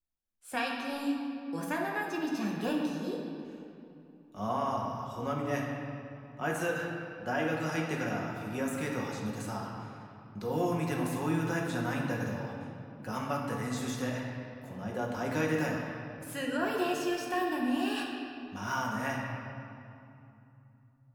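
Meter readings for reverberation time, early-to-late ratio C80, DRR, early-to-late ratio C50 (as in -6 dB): 2.8 s, 2.5 dB, -2.5 dB, 1.5 dB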